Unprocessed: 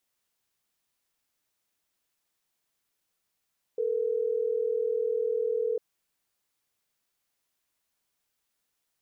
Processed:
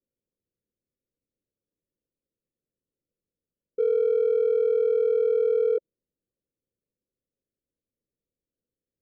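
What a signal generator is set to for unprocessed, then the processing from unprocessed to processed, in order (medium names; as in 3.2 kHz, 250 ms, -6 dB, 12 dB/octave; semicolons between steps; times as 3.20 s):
call progress tone ringback tone, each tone -28 dBFS
dynamic bell 410 Hz, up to +6 dB, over -42 dBFS, Q 1.2; elliptic low-pass 540 Hz; in parallel at -9 dB: saturation -30 dBFS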